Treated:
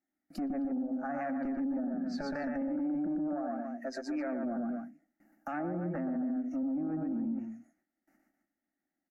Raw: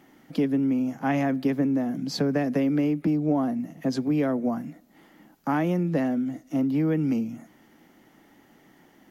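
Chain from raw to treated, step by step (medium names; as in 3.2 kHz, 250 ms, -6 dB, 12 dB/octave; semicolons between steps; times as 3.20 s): 3.15–4.27 s: tone controls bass -13 dB, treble -4 dB; one-sided clip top -25.5 dBFS, bottom -17.5 dBFS; 0.70–1.21 s: high-order bell 2.7 kHz -9.5 dB 1.2 oct; spectral noise reduction 11 dB; gate with hold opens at -54 dBFS; static phaser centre 670 Hz, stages 8; loudspeakers at several distances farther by 41 m -4 dB, 90 m -10 dB; low-pass that closes with the level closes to 1 kHz, closed at -24.5 dBFS; peak limiter -28 dBFS, peak gain reduction 11 dB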